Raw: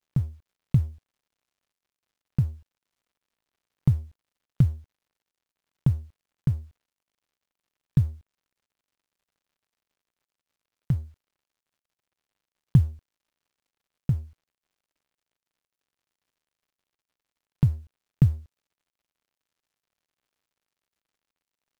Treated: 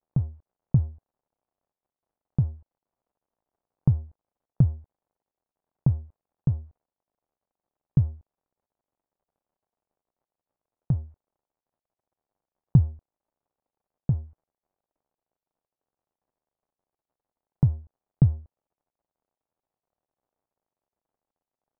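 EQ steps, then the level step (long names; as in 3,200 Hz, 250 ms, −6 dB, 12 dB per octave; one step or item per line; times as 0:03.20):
low-pass with resonance 780 Hz, resonance Q 1.7
0.0 dB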